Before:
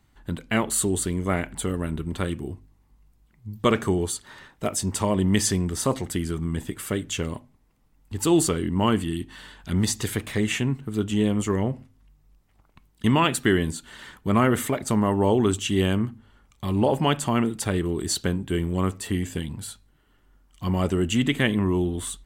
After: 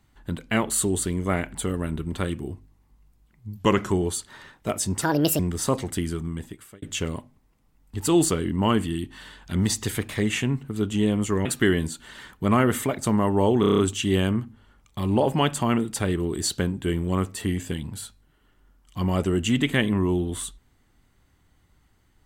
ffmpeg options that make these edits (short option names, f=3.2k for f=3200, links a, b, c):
-filter_complex "[0:a]asplit=13[a][b][c][d][e][f][g][h][i][j][k][l][m];[a]atrim=end=3.574[n];[b]atrim=start=3.57:end=3.88,asetpts=PTS-STARTPTS,asetrate=39690,aresample=44100[o];[c]atrim=start=3.876:end=4.984[p];[d]atrim=start=4.98:end=5.57,asetpts=PTS-STARTPTS,asetrate=68796,aresample=44100[q];[e]atrim=start=5.566:end=7,asetpts=PTS-STARTPTS,afade=t=out:st=0.674:d=0.76[r];[f]atrim=start=7:end=11.632,asetpts=PTS-STARTPTS,afade=t=in:d=0.004:c=hsin[s];[g]atrim=start=13.288:end=15.472[t];[h]atrim=start=15.438:end=15.472[u];[i]atrim=start=15.438:end=15.472[v];[j]atrim=start=15.438:end=15.472[w];[k]atrim=start=15.438:end=15.472[x];[l]atrim=start=15.438:end=15.472[y];[m]atrim=start=15.438[z];[n][o]acrossfade=d=0.004:c1=hsin:c2=hsin[aa];[aa][p]acrossfade=d=0.004:c1=hsin:c2=hsin[ab];[ab][q]acrossfade=d=0.004:c1=hsin:c2=hsin[ac];[r][s]concat=n=2:v=0:a=1[ad];[ac][ad]acrossfade=d=0.004:c1=hsin:c2=hsin[ae];[ae][t]acrossfade=d=0.004:c1=hsin:c2=hsin[af];[af][u]acrossfade=d=0.004:c1=hsin:c2=hsin[ag];[ag][v]acrossfade=d=0.004:c1=hsin:c2=hsin[ah];[ah][w]acrossfade=d=0.004:c1=hsin:c2=hsin[ai];[ai][x]acrossfade=d=0.004:c1=hsin:c2=hsin[aj];[aj][y]acrossfade=d=0.004:c1=hsin:c2=hsin[ak];[ak][z]acrossfade=d=0.004:c1=hsin:c2=hsin"